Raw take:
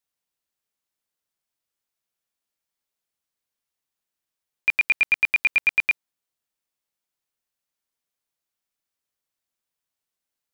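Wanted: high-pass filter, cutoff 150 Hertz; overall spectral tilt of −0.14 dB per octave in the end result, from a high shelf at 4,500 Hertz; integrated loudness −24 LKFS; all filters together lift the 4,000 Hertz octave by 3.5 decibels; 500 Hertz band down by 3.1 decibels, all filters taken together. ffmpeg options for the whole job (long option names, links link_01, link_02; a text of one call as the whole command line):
ffmpeg -i in.wav -af "highpass=150,equalizer=frequency=500:width_type=o:gain=-4,equalizer=frequency=4000:width_type=o:gain=8.5,highshelf=frequency=4500:gain=-6.5,volume=-4.5dB" out.wav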